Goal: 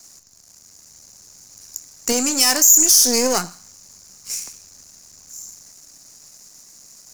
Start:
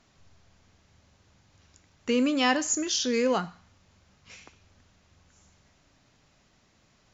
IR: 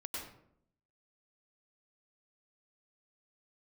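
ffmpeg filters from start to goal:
-filter_complex "[0:a]aeval=exprs='if(lt(val(0),0),0.251*val(0),val(0))':c=same,asettb=1/sr,asplit=3[a][b][c];[a]atrim=end=2.124[d];[b]atrim=start=2.12:end=2.78,asetpts=PTS-STARTPTS,afade=t=in:d=0.004:c=qsin,afade=t=out:st=0.656:d=0.004:c=qsin,lowshelf=f=230:g=-8[e];[c]atrim=start=2.776[f];[d][e]acrossfade=d=0.004:c1=hsin:c2=qsin[g];[g][f]acrossfade=d=0.004:c1=qsin:c2=hsin,acrossover=split=160[h][i];[i]acontrast=77[j];[h][j]amix=inputs=2:normalize=0,aexciter=amount=11.7:drive=8:freq=5.1k,alimiter=level_in=2.5dB:limit=-1dB:release=50:level=0:latency=1,volume=-1dB"

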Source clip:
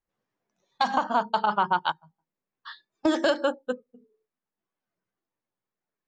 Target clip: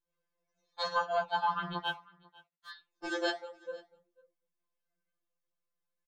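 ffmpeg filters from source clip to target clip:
-filter_complex "[0:a]aecho=1:1:1.9:0.73,asplit=3[a][b][c];[a]afade=t=out:st=3.3:d=0.02[d];[b]acompressor=threshold=-38dB:ratio=3,afade=t=in:st=3.3:d=0.02,afade=t=out:st=3.72:d=0.02[e];[c]afade=t=in:st=3.72:d=0.02[f];[d][e][f]amix=inputs=3:normalize=0,flanger=delay=3.3:depth=9.7:regen=-87:speed=1.1:shape=triangular,asettb=1/sr,asplit=3[g][h][i];[g]atrim=end=1.864[j];[h]atrim=start=1.86:end=2.7,asetpts=PTS-STARTPTS,afade=t=in:d=0.004:c=qsin,afade=t=out:st=0.836:d=0.004:c=qsin,aeval=exprs='sgn(val(0))*max(abs(val(0))-0.00251,0)':c=same[k];[i]atrim=start=2.696[l];[j][k]acrossfade=d=0.004:c1=hsin:c2=qsin[m];[m][l]acrossfade=d=0.004:c1=qsin:c2=hsin,aecho=1:1:495:0.0631,afftfilt=real='re*2.83*eq(mod(b,8),0)':imag='im*2.83*eq(mod(b,8),0)':win_size=2048:overlap=0.75"

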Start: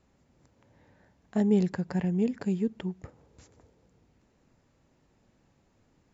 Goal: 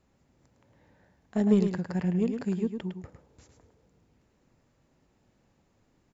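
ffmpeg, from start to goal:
-af "aeval=exprs='0.2*(cos(1*acos(clip(val(0)/0.2,-1,1)))-cos(1*PI/2))+0.0178*(cos(3*acos(clip(val(0)/0.2,-1,1)))-cos(3*PI/2))':c=same,aecho=1:1:107:0.447,volume=1dB"

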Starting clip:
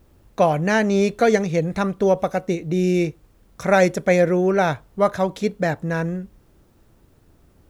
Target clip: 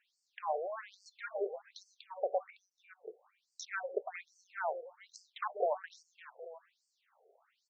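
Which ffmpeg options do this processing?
-filter_complex "[0:a]agate=range=-11dB:threshold=-47dB:ratio=16:detection=peak,bass=f=250:g=7,treble=f=4k:g=-6,asplit=2[a][b];[b]acompressor=threshold=-26dB:ratio=6,volume=-0.5dB[c];[a][c]amix=inputs=2:normalize=0,alimiter=limit=-10.5dB:level=0:latency=1:release=51,acrossover=split=230[d][e];[e]acompressor=threshold=-45dB:ratio=2[f];[d][f]amix=inputs=2:normalize=0,asettb=1/sr,asplit=3[g][h][i];[g]atrim=end=0.564[j];[h]atrim=start=0.56:end=1.06,asetpts=PTS-STARTPTS,afade=t=in:d=0.004:c=qsin,afade=t=out:st=0.496:d=0.004:c=qsin,aeval=exprs='(tanh(35.5*val(0)+0.7)-tanh(0.7))/35.5':c=same[k];[i]atrim=start=1.056[l];[j][k]acrossfade=d=0.004:c1=hsin:c2=qsin[m];[m][l]acrossfade=d=0.004:c1=qsin:c2=hsin,asettb=1/sr,asplit=3[n][o][p];[n]atrim=end=2.504[q];[o]atrim=start=2.5:end=3.08,asetpts=PTS-STARTPTS,afade=t=in:d=0.004:c=qsin,afade=t=out:st=0.576:d=0.004:c=qsin,asplit=3[r][s][t];[r]bandpass=f=300:t=q:w=8,volume=0dB[u];[s]bandpass=f=870:t=q:w=8,volume=-6dB[v];[t]bandpass=f=2.24k:t=q:w=8,volume=-9dB[w];[u][v][w]amix=inputs=3:normalize=0[x];[p]atrim=start=3.076[y];[q][x]acrossfade=d=0.004:c1=hsin:c2=qsin[z];[z][y]acrossfade=d=0.004:c1=qsin:c2=hsin,asettb=1/sr,asplit=3[aa][ab][ac];[aa]atrim=end=5.094[ad];[ab]atrim=start=5.09:end=5.89,asetpts=PTS-STARTPTS,afade=t=in:d=0.004:c=qsin,afade=t=out:st=0.796:d=0.004:c=qsin,aeval=exprs='0.224*(cos(1*acos(clip(val(0)/0.224,-1,1)))-cos(1*PI/2))+0.0282*(cos(8*acos(clip(val(0)/0.224,-1,1)))-cos(8*PI/2))':c=same[ae];[ac]atrim=start=5.886[af];[ad][ae]acrossfade=d=0.004:c1=hsin:c2=qsin[ag];[ag][af]acrossfade=d=0.004:c1=qsin:c2=hsin,asplit=2[ah][ai];[ai]aecho=0:1:558:0.211[aj];[ah][aj]amix=inputs=2:normalize=0,afftfilt=real='re*between(b*sr/1024,520*pow(6300/520,0.5+0.5*sin(2*PI*1.2*pts/sr))/1.41,520*pow(6300/520,0.5+0.5*sin(2*PI*1.2*pts/sr))*1.41)':imag='im*between(b*sr/1024,520*pow(6300/520,0.5+0.5*sin(2*PI*1.2*pts/sr))/1.41,520*pow(6300/520,0.5+0.5*sin(2*PI*1.2*pts/sr))*1.41)':win_size=1024:overlap=0.75,volume=4.5dB"

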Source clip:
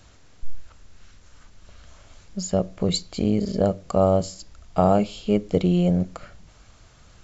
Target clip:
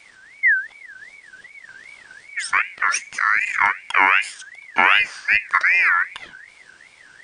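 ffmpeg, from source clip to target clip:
-af "aeval=exprs='val(0)*sin(2*PI*1900*n/s+1900*0.2/2.6*sin(2*PI*2.6*n/s))':c=same,volume=5.5dB"

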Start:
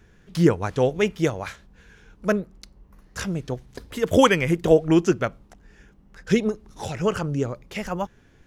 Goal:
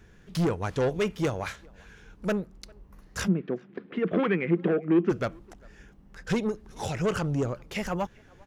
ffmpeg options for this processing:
-filter_complex "[0:a]alimiter=limit=-9.5dB:level=0:latency=1:release=404,asoftclip=type=tanh:threshold=-20.5dB,asplit=3[a][b][c];[a]afade=t=out:st=3.27:d=0.02[d];[b]highpass=f=180:w=0.5412,highpass=f=180:w=1.3066,equalizer=f=190:t=q:w=4:g=10,equalizer=f=360:t=q:w=4:g=6,equalizer=f=590:t=q:w=4:g=-4,equalizer=f=910:t=q:w=4:g=-8,lowpass=f=2.5k:w=0.5412,lowpass=f=2.5k:w=1.3066,afade=t=in:st=3.27:d=0.02,afade=t=out:st=5.09:d=0.02[e];[c]afade=t=in:st=5.09:d=0.02[f];[d][e][f]amix=inputs=3:normalize=0,asplit=2[g][h];[h]adelay=400,highpass=300,lowpass=3.4k,asoftclip=type=hard:threshold=-21dB,volume=-26dB[i];[g][i]amix=inputs=2:normalize=0"

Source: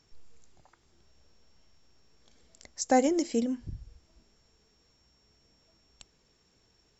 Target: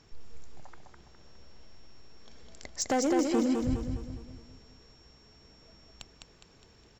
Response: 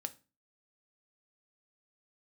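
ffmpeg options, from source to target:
-filter_complex "[0:a]lowpass=f=3.6k:p=1,acompressor=threshold=-32dB:ratio=4,volume=31.5dB,asoftclip=hard,volume=-31.5dB,asplit=2[a][b];[b]aecho=0:1:206|412|618|824|1030|1236:0.631|0.284|0.128|0.0575|0.0259|0.0116[c];[a][c]amix=inputs=2:normalize=0,volume=8.5dB"

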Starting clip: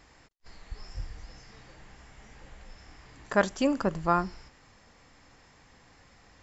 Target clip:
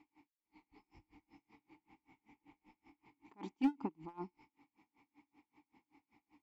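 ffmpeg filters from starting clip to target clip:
-filter_complex "[0:a]asplit=3[a][b][c];[a]bandpass=f=300:t=q:w=8,volume=0dB[d];[b]bandpass=f=870:t=q:w=8,volume=-6dB[e];[c]bandpass=f=2.24k:t=q:w=8,volume=-9dB[f];[d][e][f]amix=inputs=3:normalize=0,volume=30.5dB,asoftclip=hard,volume=-30.5dB,aeval=exprs='val(0)*pow(10,-31*(0.5-0.5*cos(2*PI*5.2*n/s))/20)':c=same,volume=5.5dB"

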